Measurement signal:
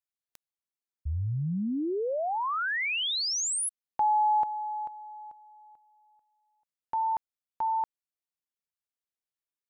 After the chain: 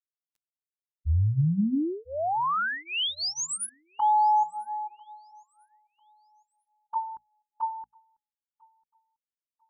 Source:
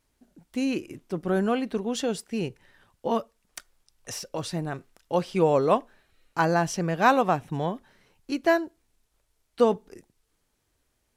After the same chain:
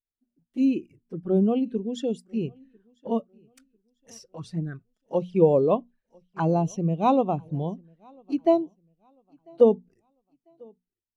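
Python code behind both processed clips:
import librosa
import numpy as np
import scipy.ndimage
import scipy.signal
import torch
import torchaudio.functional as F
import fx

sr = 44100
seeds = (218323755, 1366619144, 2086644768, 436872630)

p1 = fx.peak_eq(x, sr, hz=660.0, db=-3.0, octaves=1.5)
p2 = fx.hum_notches(p1, sr, base_hz=60, count=4)
p3 = fx.env_flanger(p2, sr, rest_ms=9.2, full_db=-25.5)
p4 = p3 + fx.echo_feedback(p3, sr, ms=996, feedback_pct=46, wet_db=-20.0, dry=0)
p5 = fx.spectral_expand(p4, sr, expansion=1.5)
y = p5 * librosa.db_to_amplitude(6.0)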